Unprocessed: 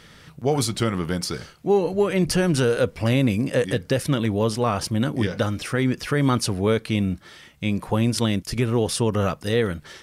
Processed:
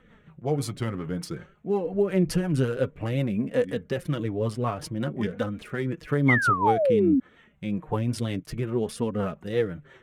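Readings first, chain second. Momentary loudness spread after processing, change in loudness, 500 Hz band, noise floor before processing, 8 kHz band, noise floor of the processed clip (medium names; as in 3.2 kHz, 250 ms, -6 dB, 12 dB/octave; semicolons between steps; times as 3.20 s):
11 LU, -3.5 dB, -3.5 dB, -50 dBFS, -12.0 dB, -57 dBFS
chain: local Wiener filter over 9 samples; flange 0.55 Hz, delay 3.8 ms, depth 4.1 ms, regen +25%; painted sound fall, 6.28–7.20 s, 250–2200 Hz -19 dBFS; peaking EQ 5.2 kHz -5.5 dB 1.7 oct; rotary cabinet horn 5.5 Hz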